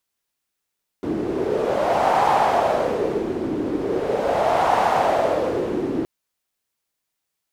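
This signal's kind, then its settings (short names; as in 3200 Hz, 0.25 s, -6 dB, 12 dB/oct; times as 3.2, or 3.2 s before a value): wind-like swept noise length 5.02 s, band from 320 Hz, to 810 Hz, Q 3.8, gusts 2, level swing 7 dB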